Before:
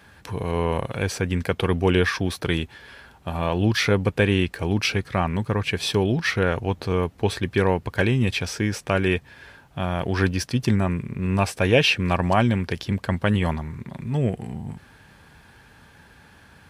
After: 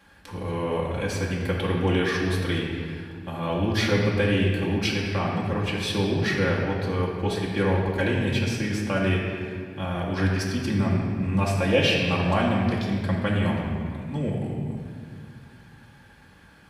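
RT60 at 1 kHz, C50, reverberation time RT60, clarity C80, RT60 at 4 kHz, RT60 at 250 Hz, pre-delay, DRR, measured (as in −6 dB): 1.9 s, 1.0 dB, 2.1 s, 2.5 dB, 1.5 s, 3.0 s, 4 ms, −5.0 dB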